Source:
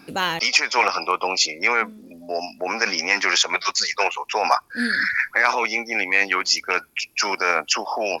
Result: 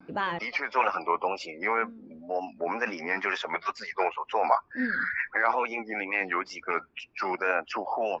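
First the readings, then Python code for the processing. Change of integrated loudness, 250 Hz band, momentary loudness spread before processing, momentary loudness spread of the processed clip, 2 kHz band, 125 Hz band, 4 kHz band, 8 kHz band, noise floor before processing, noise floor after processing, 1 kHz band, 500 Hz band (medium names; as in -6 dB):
-8.5 dB, -4.0 dB, 6 LU, 7 LU, -9.0 dB, no reading, -20.0 dB, under -25 dB, -54 dBFS, -59 dBFS, -4.5 dB, -4.0 dB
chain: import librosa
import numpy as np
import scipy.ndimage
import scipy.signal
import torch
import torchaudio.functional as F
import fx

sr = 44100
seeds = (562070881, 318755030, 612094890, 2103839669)

y = fx.spec_quant(x, sr, step_db=15)
y = scipy.signal.sosfilt(scipy.signal.butter(2, 1600.0, 'lowpass', fs=sr, output='sos'), y)
y = fx.wow_flutter(y, sr, seeds[0], rate_hz=2.1, depth_cents=110.0)
y = y * 10.0 ** (-3.5 / 20.0)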